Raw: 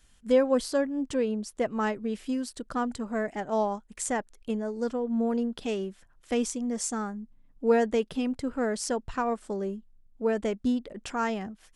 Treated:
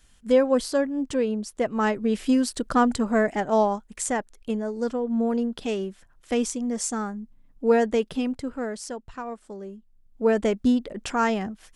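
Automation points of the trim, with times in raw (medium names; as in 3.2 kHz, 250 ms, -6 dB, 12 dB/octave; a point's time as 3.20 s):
1.68 s +3 dB
2.26 s +9.5 dB
3.02 s +9.5 dB
4.14 s +3 dB
8.20 s +3 dB
9.00 s -6 dB
9.71 s -6 dB
10.28 s +6 dB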